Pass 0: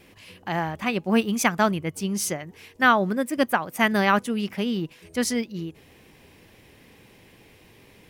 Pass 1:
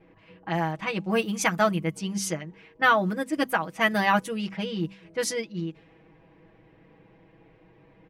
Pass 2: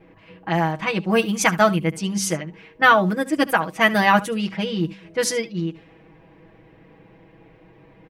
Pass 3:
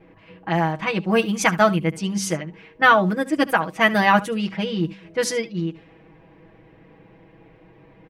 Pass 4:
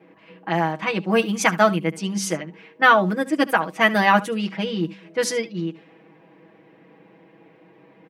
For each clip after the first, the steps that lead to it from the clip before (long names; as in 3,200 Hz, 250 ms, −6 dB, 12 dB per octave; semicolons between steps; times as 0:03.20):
comb filter 6.2 ms, depth 98%; low-pass that shuts in the quiet parts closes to 1,300 Hz, open at −18 dBFS; hum removal 64.69 Hz, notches 4; level −4.5 dB
single-tap delay 72 ms −18.5 dB; level +6 dB
high-shelf EQ 6,300 Hz −5.5 dB
high-pass filter 170 Hz 24 dB per octave